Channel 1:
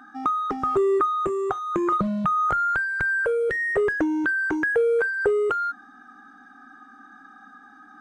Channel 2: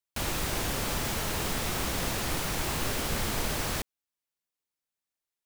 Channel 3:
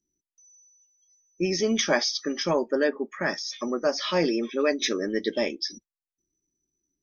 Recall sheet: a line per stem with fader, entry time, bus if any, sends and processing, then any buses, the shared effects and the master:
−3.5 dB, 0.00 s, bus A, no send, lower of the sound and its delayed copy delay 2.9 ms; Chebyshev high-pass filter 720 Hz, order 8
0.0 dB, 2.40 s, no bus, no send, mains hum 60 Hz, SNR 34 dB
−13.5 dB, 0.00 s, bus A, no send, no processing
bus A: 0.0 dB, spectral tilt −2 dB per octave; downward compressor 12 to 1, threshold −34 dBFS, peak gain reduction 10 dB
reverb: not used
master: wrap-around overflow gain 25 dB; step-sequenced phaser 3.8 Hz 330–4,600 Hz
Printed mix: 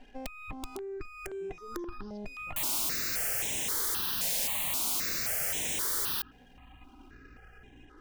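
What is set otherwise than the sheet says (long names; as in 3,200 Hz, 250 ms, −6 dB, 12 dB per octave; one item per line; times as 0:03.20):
stem 1: missing Chebyshev high-pass filter 720 Hz, order 8
stem 2 0.0 dB → +7.5 dB
stem 3 −13.5 dB → −22.5 dB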